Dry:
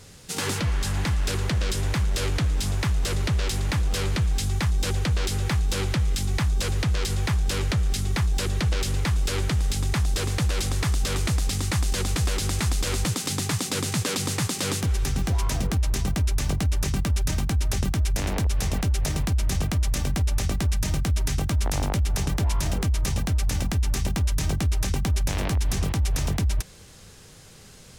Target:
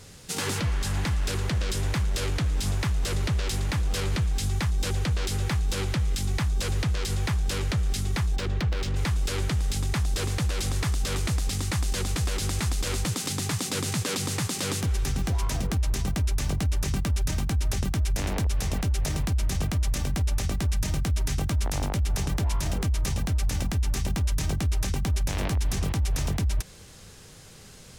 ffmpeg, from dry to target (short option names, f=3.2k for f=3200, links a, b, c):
-filter_complex "[0:a]alimiter=limit=-19dB:level=0:latency=1:release=74,asplit=3[a][b][c];[a]afade=t=out:st=8.35:d=0.02[d];[b]adynamicsmooth=sensitivity=5:basefreq=2.6k,afade=t=in:st=8.35:d=0.02,afade=t=out:st=8.95:d=0.02[e];[c]afade=t=in:st=8.95:d=0.02[f];[d][e][f]amix=inputs=3:normalize=0"